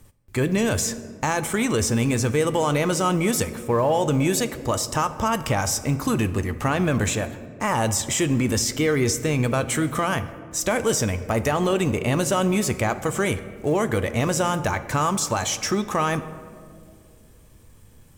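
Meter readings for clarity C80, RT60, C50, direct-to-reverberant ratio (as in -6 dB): 14.5 dB, 2.3 s, 13.5 dB, 11.0 dB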